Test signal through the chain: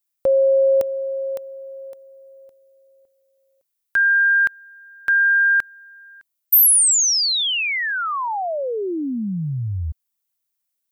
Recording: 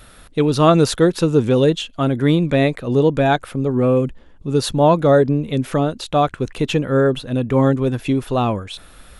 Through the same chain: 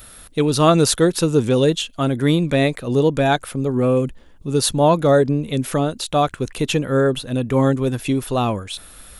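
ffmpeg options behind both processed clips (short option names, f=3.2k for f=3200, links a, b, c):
-af "aemphasis=mode=production:type=50kf,volume=-1.5dB"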